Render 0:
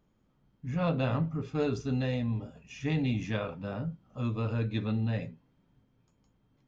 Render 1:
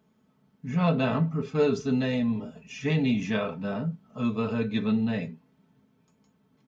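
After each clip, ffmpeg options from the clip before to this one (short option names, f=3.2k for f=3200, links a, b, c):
-af "highpass=f=87:w=0.5412,highpass=f=87:w=1.3066,aecho=1:1:4.6:0.63,volume=4dB"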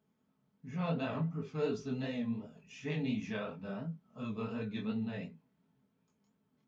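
-af "flanger=delay=18.5:depth=7.1:speed=2.8,volume=-7.5dB"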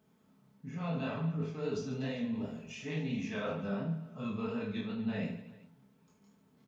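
-af "areverse,acompressor=threshold=-43dB:ratio=6,areverse,aecho=1:1:30|75|142.5|243.8|395.6:0.631|0.398|0.251|0.158|0.1,volume=7.5dB"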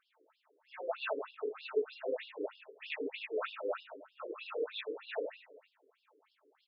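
-af "afftfilt=real='re*between(b*sr/1024,370*pow(3900/370,0.5+0.5*sin(2*PI*3.2*pts/sr))/1.41,370*pow(3900/370,0.5+0.5*sin(2*PI*3.2*pts/sr))*1.41)':imag='im*between(b*sr/1024,370*pow(3900/370,0.5+0.5*sin(2*PI*3.2*pts/sr))/1.41,370*pow(3900/370,0.5+0.5*sin(2*PI*3.2*pts/sr))*1.41)':win_size=1024:overlap=0.75,volume=8.5dB"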